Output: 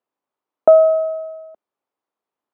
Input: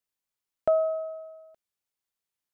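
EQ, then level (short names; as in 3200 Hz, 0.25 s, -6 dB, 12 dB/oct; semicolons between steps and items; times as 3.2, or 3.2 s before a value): HPF 110 Hz; tone controls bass 0 dB, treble -15 dB; band shelf 540 Hz +11 dB 2.7 oct; +2.5 dB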